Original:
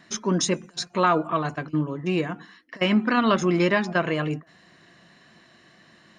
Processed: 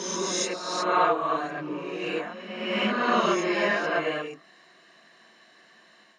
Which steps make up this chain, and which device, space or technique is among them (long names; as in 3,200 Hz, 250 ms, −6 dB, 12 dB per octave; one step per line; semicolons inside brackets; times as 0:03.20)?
ghost voice (reversed playback; convolution reverb RT60 1.4 s, pre-delay 18 ms, DRR −6 dB; reversed playback; high-pass filter 390 Hz 12 dB per octave)
level −7 dB